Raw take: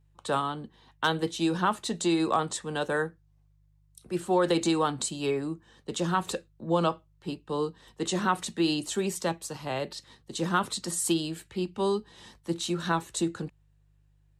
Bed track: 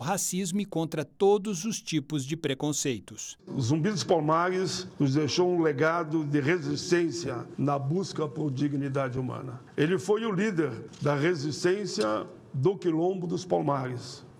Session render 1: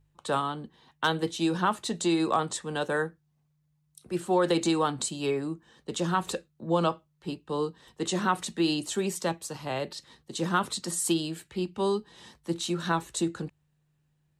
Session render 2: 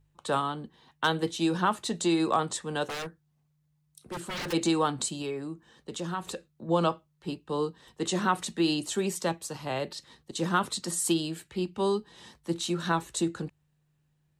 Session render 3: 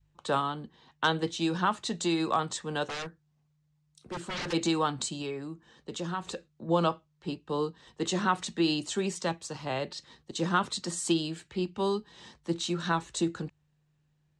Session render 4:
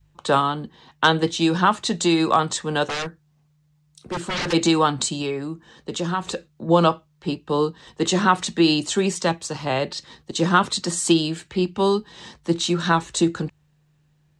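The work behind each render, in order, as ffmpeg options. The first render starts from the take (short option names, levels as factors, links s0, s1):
-af "bandreject=f=50:t=h:w=4,bandreject=f=100:t=h:w=4"
-filter_complex "[0:a]asplit=3[s0][s1][s2];[s0]afade=t=out:st=2.85:d=0.02[s3];[s1]aeval=exprs='0.0316*(abs(mod(val(0)/0.0316+3,4)-2)-1)':c=same,afade=t=in:st=2.85:d=0.02,afade=t=out:st=4.52:d=0.02[s4];[s2]afade=t=in:st=4.52:d=0.02[s5];[s3][s4][s5]amix=inputs=3:normalize=0,asettb=1/sr,asplit=3[s6][s7][s8];[s6]atrim=end=5.224[s9];[s7]atrim=start=5.22:end=6.69,asetpts=PTS-STARTPTS,afade=t=in:d=0.004:c=qsin,afade=t=out:st=1.466:d=0.004:c=qsin,acompressor=threshold=0.01:ratio=1.5:attack=3.2:release=140:knee=1:detection=peak[s10];[s8]atrim=start=6.686[s11];[s9][s10]acrossfade=d=0.004:c1=hsin:c2=qsin[s12];[s12][s11]acrossfade=d=0.004:c1=qsin:c2=hsin,asettb=1/sr,asplit=3[s13][s14][s15];[s13]atrim=end=10.314[s16];[s14]atrim=start=10.31:end=10.76,asetpts=PTS-STARTPTS,afade=t=in:d=0.004:c=qsin,afade=t=out:st=0.446:d=0.004:c=qsin,agate=range=0.0224:threshold=0.00794:ratio=3:release=100:detection=peak[s17];[s15]atrim=start=10.756[s18];[s16][s17]acrossfade=d=0.004:c1=hsin:c2=qsin[s19];[s19][s18]acrossfade=d=0.004:c1=qsin:c2=hsin"
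-af "lowpass=f=7600:w=0.5412,lowpass=f=7600:w=1.3066,adynamicequalizer=threshold=0.01:dfrequency=410:dqfactor=0.73:tfrequency=410:tqfactor=0.73:attack=5:release=100:ratio=0.375:range=2.5:mode=cutabove:tftype=bell"
-af "volume=2.99"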